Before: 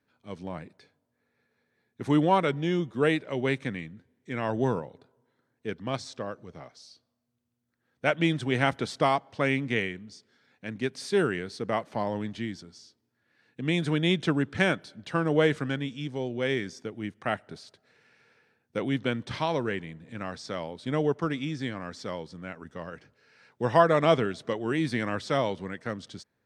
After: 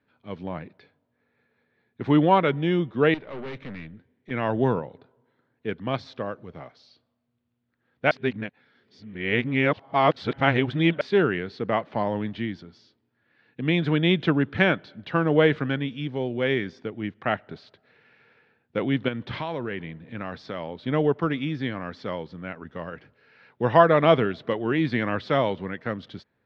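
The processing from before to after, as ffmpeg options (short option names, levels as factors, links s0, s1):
-filter_complex "[0:a]asettb=1/sr,asplit=3[s0][s1][s2];[s0]atrim=end=3.144[s3];[s1]atrim=start=3.14:end=4.31,asetpts=PTS-STARTPTS,afade=t=in:d=0.004:c=qsin,afade=t=out:st=1.166:d=0.004:c=qsin,aeval=exprs='(tanh(70.8*val(0)+0.5)-tanh(0.5))/70.8':c=same[s4];[s2]atrim=start=4.306[s5];[s3][s4]acrossfade=d=0.004:c1=hsin:c2=qsin[s6];[s6][s5]acrossfade=d=0.004:c1=qsin:c2=hsin,asettb=1/sr,asplit=3[s7][s8][s9];[s7]atrim=end=19.084[s10];[s8]atrim=start=19.08:end=20.7,asetpts=PTS-STARTPTS,afade=t=in:d=0.004:c=qsin,afade=t=out:st=1.616:d=0.004:c=qsin,acompressor=threshold=0.0282:ratio=3:attack=3.2:release=140:knee=1:detection=peak[s11];[s9]atrim=start=20.696[s12];[s10][s11]acrossfade=d=0.004:c1=hsin:c2=qsin[s13];[s13][s12]acrossfade=d=0.004:c1=qsin:c2=hsin,asplit=3[s14][s15][s16];[s14]atrim=end=8.112[s17];[s15]atrim=start=8.108:end=11.012,asetpts=PTS-STARTPTS,areverse[s18];[s16]atrim=start=11.008[s19];[s17][s18]acrossfade=d=0.004:c1=hsin:c2=hsin[s20];[s20][s19]acrossfade=d=0.004:c1=hsin:c2=hsin,lowpass=f=3700:w=0.5412,lowpass=f=3700:w=1.3066,volume=1.58"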